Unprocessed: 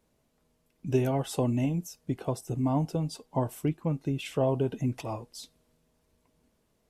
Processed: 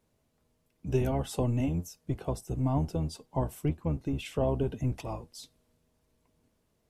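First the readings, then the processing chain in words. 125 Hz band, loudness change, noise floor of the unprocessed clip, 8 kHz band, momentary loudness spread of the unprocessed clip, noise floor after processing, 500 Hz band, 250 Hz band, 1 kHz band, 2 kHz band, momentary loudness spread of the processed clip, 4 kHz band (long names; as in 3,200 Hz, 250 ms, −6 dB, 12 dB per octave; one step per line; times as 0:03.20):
−0.5 dB, −1.5 dB, −73 dBFS, −2.5 dB, 11 LU, −74 dBFS, −2.5 dB, −2.5 dB, −2.5 dB, −2.5 dB, 10 LU, −2.5 dB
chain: sub-octave generator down 1 octave, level −3 dB
level −2.5 dB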